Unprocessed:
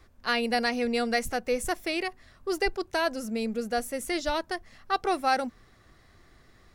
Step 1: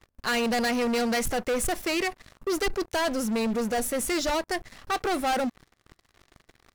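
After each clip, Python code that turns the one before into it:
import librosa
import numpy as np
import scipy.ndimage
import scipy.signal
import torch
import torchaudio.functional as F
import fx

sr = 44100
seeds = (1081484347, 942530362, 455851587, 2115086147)

y = fx.leveller(x, sr, passes=5)
y = y * librosa.db_to_amplitude(-9.0)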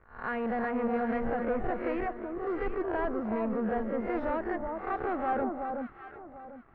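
y = fx.spec_swells(x, sr, rise_s=0.43)
y = scipy.signal.sosfilt(scipy.signal.butter(4, 1700.0, 'lowpass', fs=sr, output='sos'), y)
y = fx.echo_alternate(y, sr, ms=373, hz=1200.0, feedback_pct=51, wet_db=-3.5)
y = y * librosa.db_to_amplitude(-6.0)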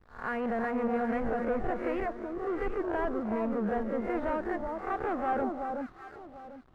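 y = fx.backlash(x, sr, play_db=-55.5)
y = fx.record_warp(y, sr, rpm=78.0, depth_cents=100.0)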